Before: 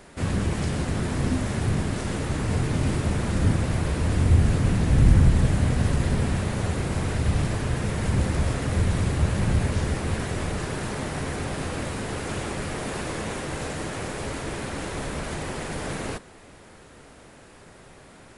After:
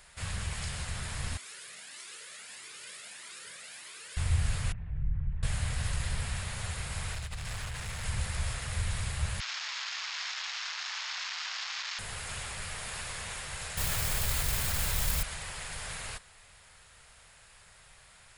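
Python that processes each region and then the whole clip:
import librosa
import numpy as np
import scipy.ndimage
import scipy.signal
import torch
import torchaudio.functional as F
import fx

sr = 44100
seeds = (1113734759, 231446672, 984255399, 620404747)

y = fx.chain(x, sr, fx.highpass(hz=310.0, slope=24),
    fx.peak_eq(hz=810.0, db=-11.0, octaves=1.2),
    fx.comb_cascade(direction='rising', hz=1.6), at=(1.37, 4.17))
y = fx.chain(y, sr, fx.envelope_sharpen(power=1.5),
    fx.lowpass(hz=2700.0, slope=24),
    fx.comb_fb(f0_hz=150.0, decay_s=0.17, harmonics='all', damping=0.0, mix_pct=70), at=(4.72, 5.43))
y = fx.chain(y, sr, fx.peak_eq(hz=9500.0, db=-6.0, octaves=0.2),
    fx.over_compress(threshold_db=-24.0, ratio=-0.5),
    fx.clip_hard(threshold_db=-24.5), at=(7.13, 8.04))
y = fx.chain(y, sr, fx.delta_mod(bps=32000, step_db=-23.0),
    fx.highpass(hz=890.0, slope=24), at=(9.4, 11.99))
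y = fx.chain(y, sr, fx.low_shelf(hz=320.0, db=10.5),
    fx.mod_noise(seeds[0], snr_db=12),
    fx.env_flatten(amount_pct=70), at=(13.77, 15.23))
y = fx.tone_stack(y, sr, knobs='10-0-10')
y = fx.notch(y, sr, hz=5900.0, q=15.0)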